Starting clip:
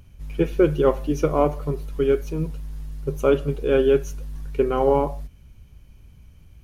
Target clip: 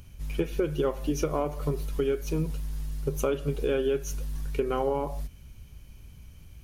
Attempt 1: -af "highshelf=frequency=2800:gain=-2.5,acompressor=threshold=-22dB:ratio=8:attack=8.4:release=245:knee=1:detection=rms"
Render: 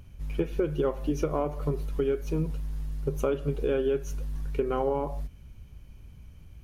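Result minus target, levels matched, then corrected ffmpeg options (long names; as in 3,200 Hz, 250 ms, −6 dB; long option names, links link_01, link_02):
4,000 Hz band −5.5 dB
-af "highshelf=frequency=2800:gain=7,acompressor=threshold=-22dB:ratio=8:attack=8.4:release=245:knee=1:detection=rms"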